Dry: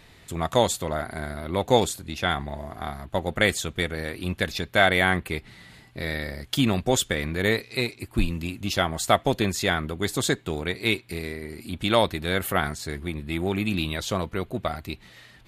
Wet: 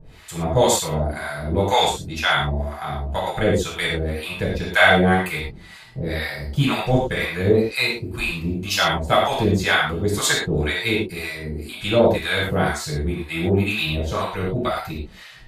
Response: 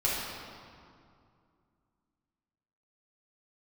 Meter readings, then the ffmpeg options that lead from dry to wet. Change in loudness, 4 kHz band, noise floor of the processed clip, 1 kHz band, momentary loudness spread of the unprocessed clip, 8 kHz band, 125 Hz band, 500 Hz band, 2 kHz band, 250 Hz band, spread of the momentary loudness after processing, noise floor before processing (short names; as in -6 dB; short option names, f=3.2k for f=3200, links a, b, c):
+5.0 dB, +4.5 dB, -43 dBFS, +5.0 dB, 12 LU, +3.5 dB, +6.0 dB, +5.0 dB, +5.5 dB, +4.0 dB, 11 LU, -53 dBFS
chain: -filter_complex "[0:a]acrossover=split=670[a][b];[a]aeval=exprs='val(0)*(1-1/2+1/2*cos(2*PI*2*n/s))':c=same[c];[b]aeval=exprs='val(0)*(1-1/2-1/2*cos(2*PI*2*n/s))':c=same[d];[c][d]amix=inputs=2:normalize=0[e];[1:a]atrim=start_sample=2205,atrim=end_sample=6174,asetrate=48510,aresample=44100[f];[e][f]afir=irnorm=-1:irlink=0,volume=2.5dB"